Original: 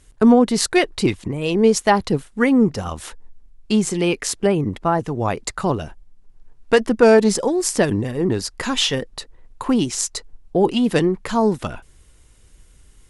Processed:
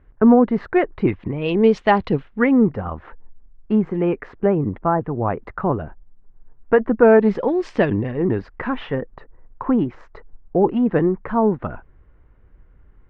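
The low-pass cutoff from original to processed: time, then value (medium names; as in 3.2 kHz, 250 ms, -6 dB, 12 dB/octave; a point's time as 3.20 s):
low-pass 24 dB/octave
0.94 s 1.8 kHz
1.52 s 3.2 kHz
2.06 s 3.2 kHz
2.95 s 1.7 kHz
6.97 s 1.7 kHz
7.64 s 3.1 kHz
8.94 s 1.7 kHz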